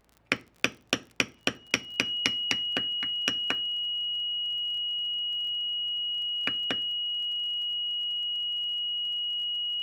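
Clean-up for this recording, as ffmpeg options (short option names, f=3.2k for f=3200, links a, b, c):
-af "adeclick=t=4,bandreject=f=55.9:t=h:w=4,bandreject=f=111.8:t=h:w=4,bandreject=f=167.7:t=h:w=4,bandreject=f=223.6:t=h:w=4,bandreject=f=279.5:t=h:w=4,bandreject=f=2.9k:w=30"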